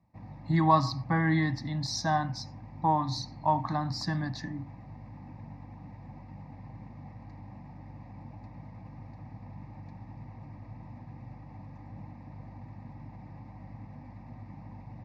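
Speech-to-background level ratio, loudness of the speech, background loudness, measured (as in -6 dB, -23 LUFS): 18.0 dB, -29.0 LUFS, -47.0 LUFS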